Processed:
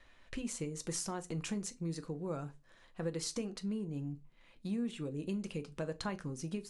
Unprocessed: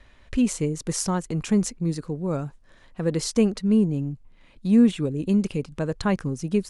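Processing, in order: bass shelf 290 Hz -8 dB; compression 6:1, threshold -29 dBFS, peak gain reduction 11.5 dB; on a send: reverberation RT60 0.25 s, pre-delay 6 ms, DRR 8 dB; on the sum: trim -6.5 dB

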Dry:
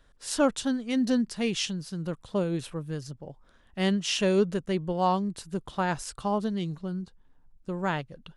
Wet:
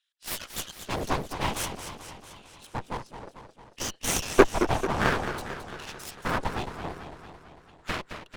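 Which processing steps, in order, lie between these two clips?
LFO high-pass square 0.57 Hz 400–2900 Hz; whisper effect; in parallel at -8 dB: fuzz box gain 29 dB, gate -37 dBFS; on the sum: Chebyshev shaper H 3 -10 dB, 6 -12 dB, 7 -27 dB, 8 -22 dB, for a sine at -3 dBFS; modulated delay 223 ms, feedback 62%, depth 173 cents, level -9.5 dB

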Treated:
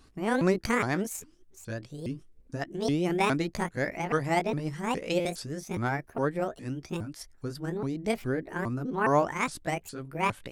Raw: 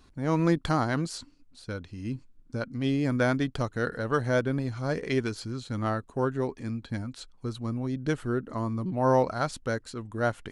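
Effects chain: sawtooth pitch modulation +9.5 st, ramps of 412 ms; peaking EQ 9.1 kHz +4.5 dB 0.51 oct; buffer glitch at 5.20 s, samples 256, times 8

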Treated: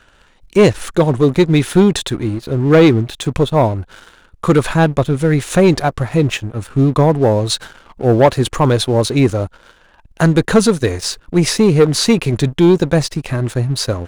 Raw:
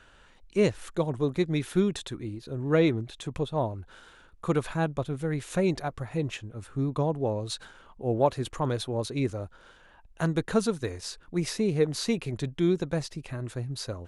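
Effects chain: waveshaping leveller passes 2; trim +9 dB

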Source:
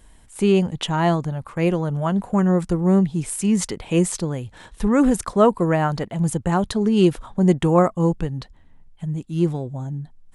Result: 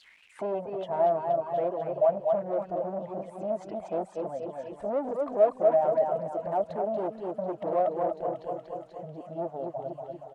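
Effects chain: coarse spectral quantiser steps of 15 dB; treble shelf 8.9 kHz -9.5 dB; feedback delay 237 ms, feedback 51%, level -4.5 dB; reverb removal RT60 1.1 s; feedback echo behind a high-pass 733 ms, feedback 70%, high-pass 3.2 kHz, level -8 dB; in parallel at +2 dB: compression 6:1, threshold -30 dBFS, peak gain reduction 18 dB; on the sum: bass shelf 400 Hz +2.5 dB; saturation -17.5 dBFS, distortion -8 dB; word length cut 8-bit, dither none; auto-wah 640–4600 Hz, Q 8.4, down, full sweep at -28.5 dBFS; trim +7.5 dB

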